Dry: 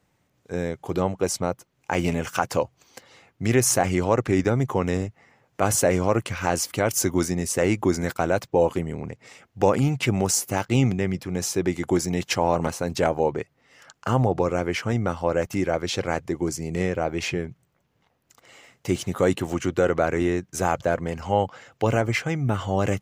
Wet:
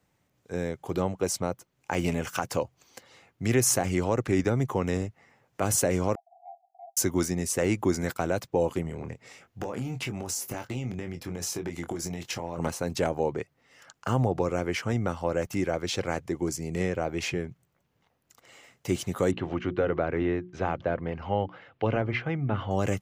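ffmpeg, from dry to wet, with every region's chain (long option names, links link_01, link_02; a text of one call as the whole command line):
ffmpeg -i in.wav -filter_complex "[0:a]asettb=1/sr,asplit=3[link_01][link_02][link_03];[link_01]atrim=end=6.154[link_04];[link_02]atrim=start=6.15:end=6.97,asetpts=PTS-STARTPTS,afade=type=in:duration=0.004:curve=qsin,afade=type=out:start_time=0.816:duration=0.004:curve=qsin,asuperpass=centerf=730:order=12:qfactor=5.4,acompressor=threshold=-42dB:ratio=3:attack=3.2:release=140:knee=1:detection=peak[link_05];[link_03]atrim=start=6.966[link_06];[link_04][link_05]acrossfade=duration=0.004:curve1=hsin:curve2=qsin[link_07];[link_07][link_06]acrossfade=duration=0.004:curve1=qsin:curve2=hsin,asettb=1/sr,asplit=3[link_08][link_09][link_10];[link_08]atrim=end=8.824[link_11];[link_09]atrim=start=8.82:end=12.58,asetpts=PTS-STARTPTS,afade=type=in:duration=0.004:curve=qsin,afade=type=out:start_time=3.756:duration=0.004:curve=qsin,equalizer=frequency=8600:width_type=o:width=0.22:gain=-3,acompressor=threshold=-25dB:ratio=16:attack=3.2:release=140:knee=1:detection=peak,asplit=2[link_12][link_13];[link_13]adelay=24,volume=-7.5dB[link_14];[link_12][link_14]amix=inputs=2:normalize=0,atrim=end_sample=165816[link_15];[link_10]atrim=start=12.576[link_16];[link_11][link_15]acrossfade=duration=0.004:curve1=hsin:curve2=qsin[link_17];[link_17][link_16]acrossfade=duration=0.004:curve1=qsin:curve2=hsin,asettb=1/sr,asplit=3[link_18][link_19][link_20];[link_18]atrim=end=19.314[link_21];[link_19]atrim=start=19.31:end=22.71,asetpts=PTS-STARTPTS,afade=type=in:duration=0.004:curve=qsin,afade=type=out:start_time=3.396:duration=0.004:curve=qsin,lowpass=frequency=3600:width=0.5412,lowpass=frequency=3600:width=1.3066,bandreject=frequency=60:width_type=h:width=6,bandreject=frequency=120:width_type=h:width=6,bandreject=frequency=180:width_type=h:width=6,bandreject=frequency=240:width_type=h:width=6,bandreject=frequency=300:width_type=h:width=6,bandreject=frequency=360:width_type=h:width=6,adynamicequalizer=threshold=0.0126:dfrequency=2100:dqfactor=0.7:tfrequency=2100:tqfactor=0.7:attack=5:release=100:ratio=0.375:range=2:mode=cutabove:tftype=highshelf[link_22];[link_20]atrim=start=22.706[link_23];[link_21][link_22]acrossfade=duration=0.004:curve1=hsin:curve2=qsin[link_24];[link_24][link_23]acrossfade=duration=0.004:curve1=qsin:curve2=hsin,acrossover=split=440|3000[link_25][link_26][link_27];[link_26]acompressor=threshold=-23dB:ratio=6[link_28];[link_25][link_28][link_27]amix=inputs=3:normalize=0,highshelf=frequency=10000:gain=3.5,volume=-3.5dB" out.wav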